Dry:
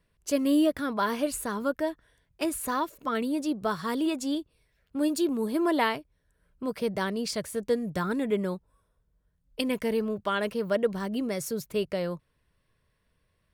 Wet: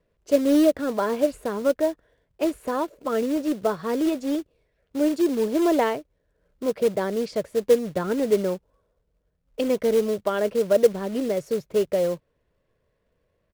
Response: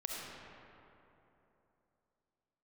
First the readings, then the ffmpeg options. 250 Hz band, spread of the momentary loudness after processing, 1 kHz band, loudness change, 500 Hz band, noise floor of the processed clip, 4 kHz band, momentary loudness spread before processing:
+3.5 dB, 9 LU, +1.0 dB, +5.5 dB, +8.0 dB, −73 dBFS, −1.5 dB, 8 LU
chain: -filter_complex "[0:a]firequalizer=gain_entry='entry(130,0);entry(510,11);entry(1000,0);entry(10000,-17)':delay=0.05:min_phase=1,acrossover=split=750[link_01][link_02];[link_01]acrusher=bits=4:mode=log:mix=0:aa=0.000001[link_03];[link_03][link_02]amix=inputs=2:normalize=0,volume=-1dB"

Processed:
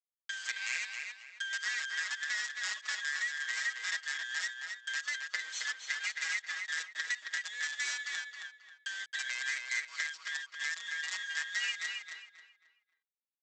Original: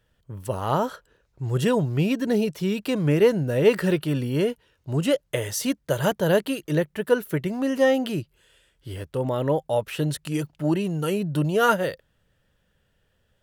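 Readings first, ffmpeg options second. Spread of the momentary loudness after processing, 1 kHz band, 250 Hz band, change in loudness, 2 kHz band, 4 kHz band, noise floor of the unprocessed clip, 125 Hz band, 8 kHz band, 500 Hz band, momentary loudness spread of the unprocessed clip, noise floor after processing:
7 LU, −21.0 dB, below −40 dB, −11.5 dB, +1.0 dB, −2.0 dB, −69 dBFS, below −40 dB, −2.5 dB, below −40 dB, 10 LU, below −85 dBFS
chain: -filter_complex "[0:a]afftfilt=real='real(if(lt(b,272),68*(eq(floor(b/68),0)*1+eq(floor(b/68),1)*0+eq(floor(b/68),2)*3+eq(floor(b/68),3)*2)+mod(b,68),b),0)':imag='imag(if(lt(b,272),68*(eq(floor(b/68),0)*1+eq(floor(b/68),1)*0+eq(floor(b/68),2)*3+eq(floor(b/68),3)*2)+mod(b,68),b),0)':win_size=2048:overlap=0.75,aresample=16000,acrusher=bits=4:dc=4:mix=0:aa=0.000001,aresample=44100,aecho=1:1:6.3:0.83,acompressor=threshold=-38dB:ratio=12,highpass=1400,asplit=2[link_01][link_02];[link_02]adelay=269,lowpass=frequency=4100:poles=1,volume=-4dB,asplit=2[link_03][link_04];[link_04]adelay=269,lowpass=frequency=4100:poles=1,volume=0.32,asplit=2[link_05][link_06];[link_06]adelay=269,lowpass=frequency=4100:poles=1,volume=0.32,asplit=2[link_07][link_08];[link_08]adelay=269,lowpass=frequency=4100:poles=1,volume=0.32[link_09];[link_01][link_03][link_05][link_07][link_09]amix=inputs=5:normalize=0,volume=6dB"

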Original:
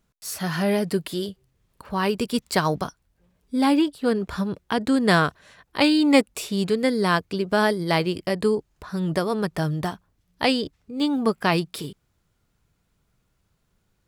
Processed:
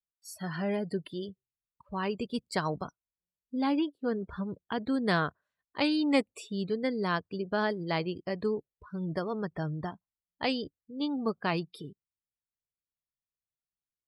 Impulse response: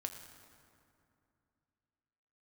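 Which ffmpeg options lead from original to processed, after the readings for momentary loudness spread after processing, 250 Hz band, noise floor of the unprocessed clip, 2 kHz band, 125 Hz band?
12 LU, −9.0 dB, −71 dBFS, −9.5 dB, −9.0 dB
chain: -af "afftdn=noise_reduction=29:noise_floor=-34,volume=-9dB"

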